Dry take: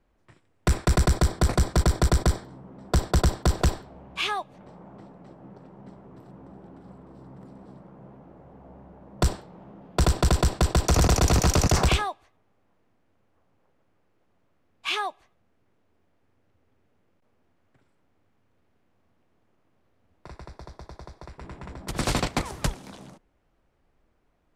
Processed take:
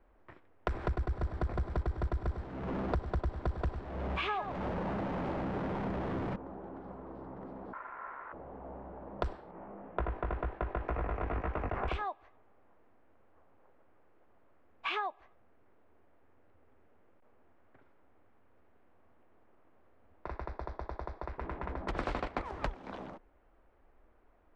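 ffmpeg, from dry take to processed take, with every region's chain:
ffmpeg -i in.wav -filter_complex "[0:a]asettb=1/sr,asplit=3[link_01][link_02][link_03];[link_01]atrim=end=0.744[link_04];[link_02]atrim=start=0.74:end=6.36,asetpts=PTS-STARTPTS,afade=type=in:duration=0.004:curve=qsin,afade=type=out:start_time=5.616:duration=0.004:curve=qsin,aeval=exprs='val(0)+0.5*0.0188*sgn(val(0))':channel_layout=same,equalizer=frequency=99:width_type=o:width=2.3:gain=9.5,aecho=1:1:103:0.316,atrim=end_sample=247842[link_05];[link_03]atrim=start=6.356[link_06];[link_04][link_05]acrossfade=duration=0.004:curve1=hsin:curve2=qsin[link_07];[link_07][link_06]acrossfade=duration=0.004:curve1=qsin:curve2=hsin,asettb=1/sr,asplit=3[link_08][link_09][link_10];[link_08]atrim=end=7.734[link_11];[link_09]atrim=start=7.73:end=8.33,asetpts=PTS-STARTPTS,afade=type=in:duration=0.004:curve=qsin,afade=type=out:start_time=0.596:duration=0.004:curve=qsin,lowshelf=frequency=79:gain=8.5,aeval=exprs='val(0)*sin(2*PI*1200*n/s)':channel_layout=same[link_12];[link_10]atrim=start=8.326[link_13];[link_11][link_12]acrossfade=duration=0.004:curve1=hsin:curve2=qsin[link_14];[link_14][link_13]acrossfade=duration=0.004:curve1=qsin:curve2=hsin,asettb=1/sr,asplit=3[link_15][link_16][link_17];[link_15]atrim=end=9.514[link_18];[link_16]atrim=start=9.51:end=11.88,asetpts=PTS-STARTPTS,afade=type=in:duration=0.004:curve=qsin,afade=type=out:start_time=2.366:duration=0.004:curve=qsin,acrossover=split=3600[link_19][link_20];[link_20]acompressor=threshold=-40dB:ratio=4:attack=1:release=60[link_21];[link_19][link_21]amix=inputs=2:normalize=0,highshelf=frequency=3300:width_type=q:width=1.5:gain=-12,flanger=delay=17.5:depth=3:speed=2[link_22];[link_17]atrim=start=11.876[link_23];[link_18][link_22]acrossfade=duration=0.004:curve1=hsin:curve2=qsin[link_24];[link_24][link_23]acrossfade=duration=0.004:curve1=qsin:curve2=hsin,lowpass=1800,equalizer=frequency=140:width=1:gain=-12.5,acompressor=threshold=-38dB:ratio=6,volume=5.5dB" out.wav

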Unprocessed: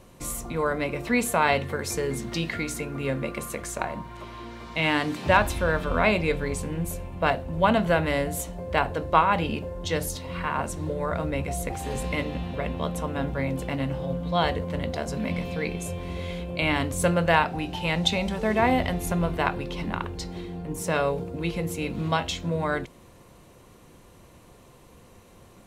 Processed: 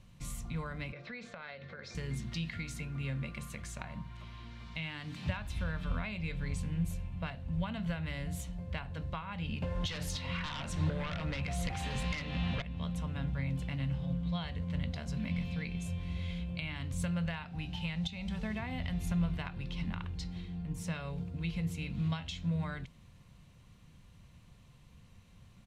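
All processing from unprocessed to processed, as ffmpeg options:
ffmpeg -i in.wav -filter_complex "[0:a]asettb=1/sr,asplit=3[link_01][link_02][link_03];[link_01]atrim=end=0.924[link_04];[link_02]atrim=start=0.92:end=1.95,asetpts=PTS-STARTPTS,afade=type=in:duration=0.004:curve=qsin,afade=type=out:start_time=1.026:duration=0.004:curve=qsin,highpass=240,equalizer=frequency=260:width_type=q:width=4:gain=-6,equalizer=frequency=540:width_type=q:width=4:gain=8,equalizer=frequency=940:width_type=q:width=4:gain=-7,equalizer=frequency=1500:width_type=q:width=4:gain=4,equalizer=frequency=2900:width_type=q:width=4:gain=-9,lowpass=frequency=4800:width=0.5412,lowpass=frequency=4800:width=1.3066,acompressor=threshold=-27dB:ratio=12:attack=3.2:release=140:knee=1:detection=peak[link_05];[link_03]atrim=start=1.946[link_06];[link_04][link_05]acrossfade=duration=0.004:curve1=hsin:curve2=qsin[link_07];[link_07][link_06]acrossfade=duration=0.004:curve1=qsin:curve2=hsin,asettb=1/sr,asplit=3[link_08][link_09][link_10];[link_08]atrim=end=9.624[link_11];[link_09]atrim=start=9.62:end=12.62,asetpts=PTS-STARTPTS,afade=type=in:duration=0.004:curve=qsin,afade=type=out:start_time=2.996:duration=0.004:curve=qsin,asplit=2[link_12][link_13];[link_13]highpass=frequency=720:poles=1,volume=11dB,asoftclip=type=tanh:threshold=-12dB[link_14];[link_12][link_14]amix=inputs=2:normalize=0,lowpass=frequency=3200:poles=1,volume=-6dB,aeval=exprs='0.237*sin(PI/2*2.82*val(0)/0.237)':channel_layout=same[link_15];[link_10]atrim=start=12.616[link_16];[link_11][link_15]acrossfade=duration=0.004:curve1=hsin:curve2=qsin[link_17];[link_17][link_16]acrossfade=duration=0.004:curve1=qsin:curve2=hsin,equalizer=frequency=3200:width_type=o:width=2.9:gain=14,acompressor=threshold=-18dB:ratio=6,firequalizer=gain_entry='entry(160,0);entry(350,-20);entry(570,-18)':delay=0.05:min_phase=1,volume=-2.5dB" out.wav

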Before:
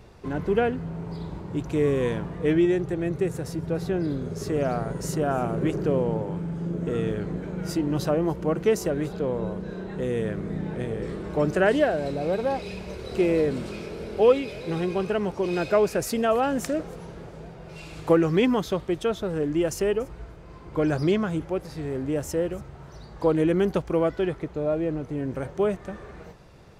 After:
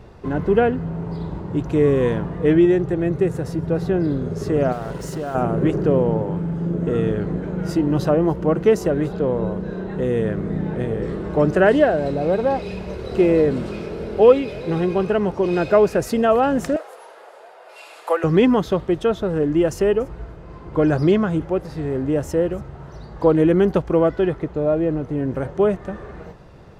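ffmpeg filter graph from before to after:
ffmpeg -i in.wav -filter_complex "[0:a]asettb=1/sr,asplit=3[link_01][link_02][link_03];[link_01]atrim=end=4.724[link_04];[link_02]atrim=start=4.72:end=5.35,asetpts=PTS-STARTPTS,afade=type=in:duration=0.004:curve=qsin,afade=type=out:start_time=0.626:duration=0.004:curve=qsin,equalizer=frequency=160:width=0.37:gain=-5,acompressor=threshold=-29dB:ratio=6:attack=3.2:release=140:knee=1:detection=peak,acrusher=bits=6:mix=0:aa=0.5[link_05];[link_03]atrim=start=5.346[link_06];[link_04][link_05]acrossfade=duration=0.004:curve1=hsin:curve2=qsin[link_07];[link_07][link_06]acrossfade=duration=0.004:curve1=qsin:curve2=hsin,asettb=1/sr,asplit=3[link_08][link_09][link_10];[link_08]atrim=end=16.764[link_11];[link_09]atrim=start=16.76:end=18.24,asetpts=PTS-STARTPTS,afade=type=in:duration=0.004:curve=qsin,afade=type=out:start_time=1.476:duration=0.004:curve=qsin,highpass=frequency=590:width=0.5412,highpass=frequency=590:width=1.3066,equalizer=frequency=11000:width=1.6:gain=10.5,bandreject=frequency=5900:width=18[link_12];[link_10]atrim=start=18.236[link_13];[link_11][link_12]acrossfade=duration=0.004:curve1=hsin:curve2=qsin[link_14];[link_14][link_13]acrossfade=duration=0.004:curve1=qsin:curve2=hsin,highshelf=frequency=3300:gain=-10,bandreject=frequency=2300:width=17,volume=6.5dB" out.wav

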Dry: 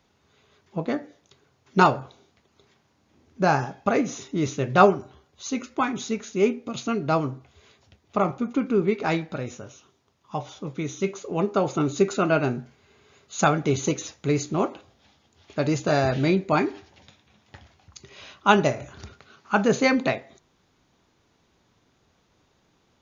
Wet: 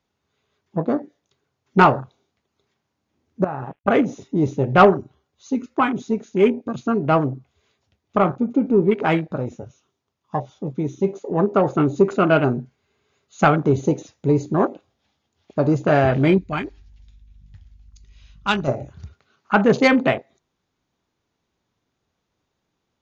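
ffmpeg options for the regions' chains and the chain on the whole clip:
ffmpeg -i in.wav -filter_complex "[0:a]asettb=1/sr,asplit=3[link_01][link_02][link_03];[link_01]atrim=end=3.444[link_04];[link_02]atrim=start=3.44:end=3.88,asetpts=PTS-STARTPTS,afade=type=in:duration=0.004:curve=qsin,afade=type=out:start_time=0.436:duration=0.004:curve=qsin,aeval=exprs='sgn(val(0))*max(abs(val(0))-0.00473,0)':channel_layout=same,acompressor=threshold=-30dB:ratio=6:attack=3.2:release=140:knee=1:detection=peak,highshelf=frequency=3500:width_type=q:width=3:gain=-9[link_05];[link_03]atrim=start=3.876[link_06];[link_04][link_05]acrossfade=duration=0.004:curve1=hsin:curve2=qsin[link_07];[link_07][link_06]acrossfade=duration=0.004:curve1=qsin:curve2=hsin,asettb=1/sr,asplit=3[link_08][link_09][link_10];[link_08]atrim=end=16.384[link_11];[link_09]atrim=start=16.38:end=18.68,asetpts=PTS-STARTPTS,afade=type=in:duration=0.004:curve=qsin,afade=type=out:start_time=2.296:duration=0.004:curve=qsin,equalizer=frequency=500:width=0.39:gain=-14,aeval=exprs='val(0)+0.00316*(sin(2*PI*50*n/s)+sin(2*PI*2*50*n/s)/2+sin(2*PI*3*50*n/s)/3+sin(2*PI*4*50*n/s)/4+sin(2*PI*5*50*n/s)/5)':channel_layout=same[link_12];[link_10]atrim=start=18.676[link_13];[link_11][link_12]acrossfade=duration=0.004:curve1=hsin:curve2=qsin[link_14];[link_14][link_13]acrossfade=duration=0.004:curve1=qsin:curve2=hsin,afwtdn=0.0224,acontrast=78,volume=-1dB" out.wav

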